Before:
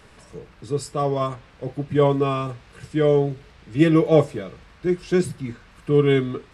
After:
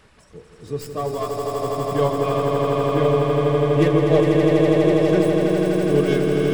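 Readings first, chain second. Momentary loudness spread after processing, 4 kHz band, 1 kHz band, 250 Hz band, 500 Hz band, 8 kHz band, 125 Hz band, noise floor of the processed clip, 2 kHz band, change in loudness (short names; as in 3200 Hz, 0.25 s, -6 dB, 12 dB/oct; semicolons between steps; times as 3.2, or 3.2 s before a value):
9 LU, +3.5 dB, +4.0 dB, +3.0 dB, +3.5 dB, n/a, +2.5 dB, -50 dBFS, +3.0 dB, +2.5 dB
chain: tracing distortion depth 0.077 ms; reverb removal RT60 1.6 s; swelling echo 82 ms, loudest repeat 8, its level -4.5 dB; gain -3 dB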